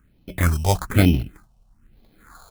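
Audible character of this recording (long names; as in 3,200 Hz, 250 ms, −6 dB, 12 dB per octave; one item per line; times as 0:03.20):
aliases and images of a low sample rate 2,800 Hz, jitter 0%
phaser sweep stages 4, 1.1 Hz, lowest notch 300–1,400 Hz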